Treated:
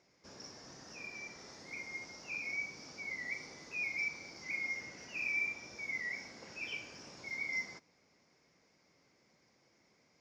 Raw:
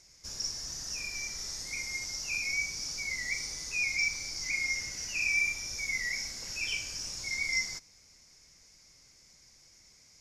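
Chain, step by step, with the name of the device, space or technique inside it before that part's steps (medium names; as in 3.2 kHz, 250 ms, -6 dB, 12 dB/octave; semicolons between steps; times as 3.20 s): early digital voice recorder (band-pass 220–3600 Hz; block-companded coder 7-bit); tilt shelf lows +6.5 dB, about 1.5 kHz; trim -3 dB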